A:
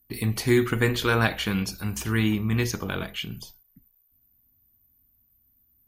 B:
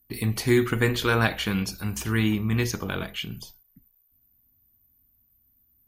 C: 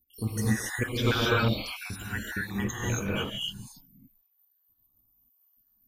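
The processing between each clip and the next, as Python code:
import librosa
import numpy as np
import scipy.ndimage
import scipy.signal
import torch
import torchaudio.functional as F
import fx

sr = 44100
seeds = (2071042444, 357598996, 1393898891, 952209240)

y1 = x
y2 = fx.spec_dropout(y1, sr, seeds[0], share_pct=71)
y2 = fx.rev_gated(y2, sr, seeds[1], gate_ms=300, shape='rising', drr_db=-6.0)
y2 = F.gain(torch.from_numpy(y2), -3.5).numpy()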